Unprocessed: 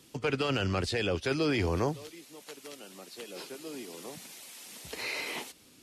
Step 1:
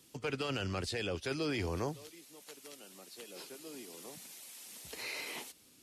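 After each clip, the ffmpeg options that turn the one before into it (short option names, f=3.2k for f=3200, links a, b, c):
-af "highshelf=f=6k:g=7,volume=-7dB"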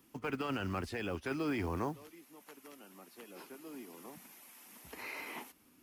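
-af "equalizer=f=125:t=o:w=1:g=-6,equalizer=f=250:t=o:w=1:g=4,equalizer=f=500:t=o:w=1:g=-6,equalizer=f=1k:t=o:w=1:g=4,equalizer=f=4k:t=o:w=1:g=-11,equalizer=f=8k:t=o:w=1:g=-11,acrusher=bits=7:mode=log:mix=0:aa=0.000001,volume=1.5dB"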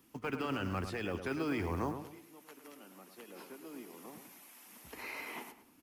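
-filter_complex "[0:a]asplit=2[a][b];[b]adelay=106,lowpass=f=2.2k:p=1,volume=-8dB,asplit=2[c][d];[d]adelay=106,lowpass=f=2.2k:p=1,volume=0.35,asplit=2[e][f];[f]adelay=106,lowpass=f=2.2k:p=1,volume=0.35,asplit=2[g][h];[h]adelay=106,lowpass=f=2.2k:p=1,volume=0.35[i];[a][c][e][g][i]amix=inputs=5:normalize=0"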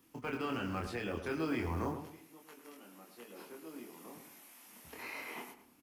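-filter_complex "[0:a]asplit=2[a][b];[b]adelay=25,volume=-3dB[c];[a][c]amix=inputs=2:normalize=0,volume=-2.5dB"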